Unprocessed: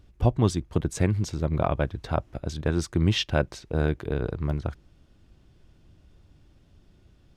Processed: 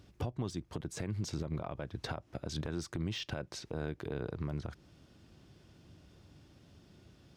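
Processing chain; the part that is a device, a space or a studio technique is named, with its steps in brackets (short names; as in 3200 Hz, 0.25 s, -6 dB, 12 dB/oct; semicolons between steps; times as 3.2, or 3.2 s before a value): broadcast voice chain (HPF 100 Hz 12 dB/oct; de-esser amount 80%; compressor 5:1, threshold -33 dBFS, peak gain reduction 16 dB; bell 5200 Hz +3.5 dB 0.7 oct; limiter -28 dBFS, peak gain reduction 9.5 dB); gain +2 dB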